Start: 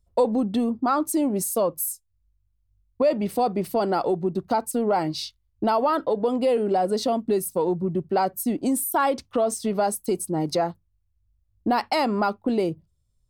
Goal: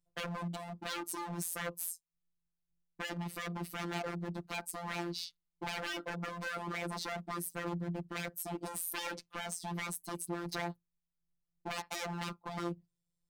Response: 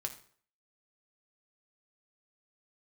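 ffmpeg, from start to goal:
-af "aeval=exprs='0.0631*(abs(mod(val(0)/0.0631+3,4)-2)-1)':channel_layout=same,highpass=43,afftfilt=real='hypot(re,im)*cos(PI*b)':imag='0':win_size=1024:overlap=0.75,volume=-6dB"

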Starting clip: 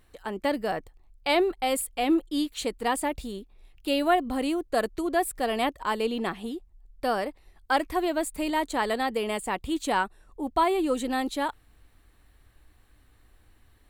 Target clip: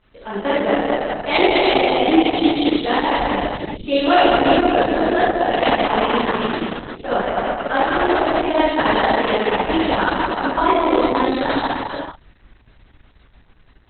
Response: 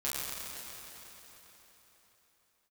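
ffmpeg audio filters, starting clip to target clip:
-filter_complex "[1:a]atrim=start_sample=2205,afade=type=out:start_time=0.43:duration=0.01,atrim=end_sample=19404,asetrate=25578,aresample=44100[link_01];[0:a][link_01]afir=irnorm=-1:irlink=0,volume=1.5dB" -ar 48000 -c:a libopus -b:a 6k

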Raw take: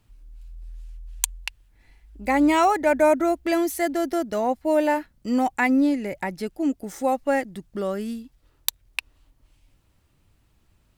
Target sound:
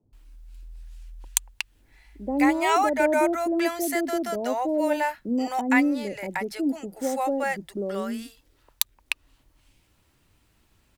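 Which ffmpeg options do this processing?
ffmpeg -i in.wav -filter_complex "[0:a]lowshelf=frequency=130:gain=-8,bandreject=frequency=1200:width=27,asplit=2[link_01][link_02];[link_02]acompressor=threshold=-34dB:ratio=6,volume=-2dB[link_03];[link_01][link_03]amix=inputs=2:normalize=0,acrossover=split=150|600[link_04][link_05][link_06];[link_04]adelay=30[link_07];[link_06]adelay=130[link_08];[link_07][link_05][link_08]amix=inputs=3:normalize=0,volume=-1dB" out.wav

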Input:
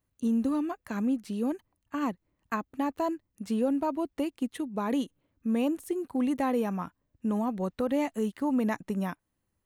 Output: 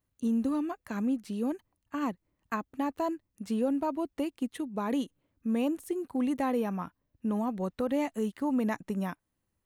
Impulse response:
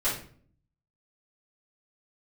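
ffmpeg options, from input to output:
-filter_complex "[0:a]asettb=1/sr,asplit=3[link_01][link_02][link_03];[link_01]atrim=end=6.574[link_04];[link_02]atrim=start=6.57:end=7.39,asetpts=PTS-STARTPTS,afade=type=in:duration=0.004:curve=qsin,afade=type=out:start_time=0.816:duration=0.004:curve=qsin,equalizer=frequency=7600:width_type=o:width=0.27:gain=-11.5[link_05];[link_03]atrim=start=7.386[link_06];[link_04][link_05]acrossfade=duration=0.004:curve1=hsin:curve2=qsin[link_07];[link_07][link_06]acrossfade=duration=0.004:curve1=qsin:curve2=hsin,volume=-1.5dB"

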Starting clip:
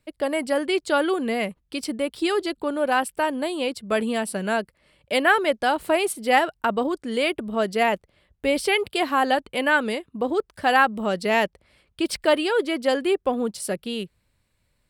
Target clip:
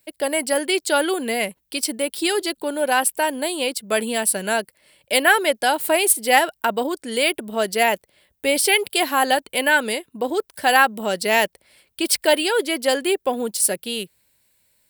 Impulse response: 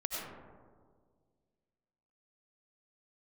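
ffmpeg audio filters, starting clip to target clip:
-af "aemphasis=mode=production:type=bsi,bandreject=frequency=1200:width=5.6,volume=3dB"

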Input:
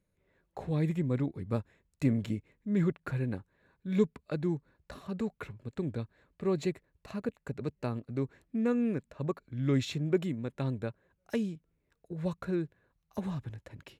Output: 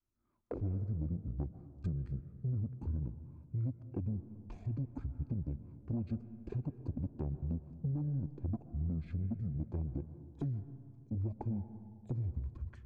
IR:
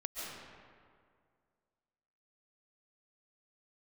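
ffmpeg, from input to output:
-filter_complex "[0:a]afwtdn=0.0126,adynamicequalizer=threshold=0.0112:dfrequency=190:dqfactor=0.86:tfrequency=190:tqfactor=0.86:attack=5:release=100:ratio=0.375:range=2:mode=boostabove:tftype=bell,acompressor=threshold=-40dB:ratio=10,asoftclip=type=tanh:threshold=-36.5dB,asetrate=24750,aresample=44100,atempo=1.7818,asplit=2[link_01][link_02];[1:a]atrim=start_sample=2205,lowpass=1600[link_03];[link_02][link_03]afir=irnorm=-1:irlink=0,volume=-10dB[link_04];[link_01][link_04]amix=inputs=2:normalize=0,asetrate=48000,aresample=44100,volume=6.5dB"

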